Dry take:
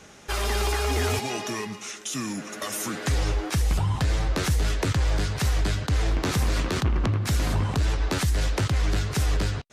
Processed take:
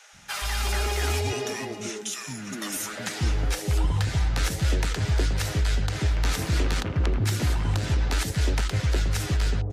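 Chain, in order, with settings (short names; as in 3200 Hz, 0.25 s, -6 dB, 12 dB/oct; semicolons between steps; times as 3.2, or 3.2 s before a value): notch 1100 Hz, Q 9.4; three bands offset in time highs, lows, mids 0.13/0.36 s, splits 230/700 Hz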